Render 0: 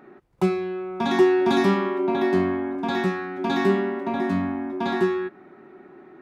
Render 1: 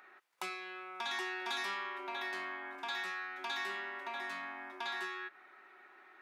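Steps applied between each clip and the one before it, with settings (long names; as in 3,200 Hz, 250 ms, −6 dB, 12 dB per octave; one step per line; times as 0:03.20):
high-pass filter 1,500 Hz 12 dB per octave
downward compressor 2 to 1, threshold −43 dBFS, peak gain reduction 9 dB
level +1.5 dB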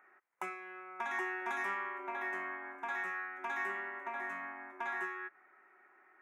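drawn EQ curve 2,100 Hz 0 dB, 4,400 Hz −28 dB, 6,300 Hz −9 dB
expander for the loud parts 1.5 to 1, over −54 dBFS
level +3 dB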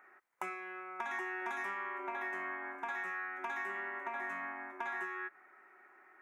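downward compressor, threshold −39 dBFS, peak gain reduction 6.5 dB
level +3 dB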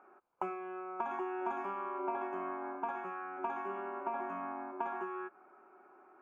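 moving average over 23 samples
level +8 dB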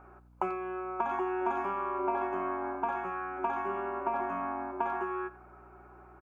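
mains hum 60 Hz, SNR 24 dB
far-end echo of a speakerphone 90 ms, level −17 dB
level +5.5 dB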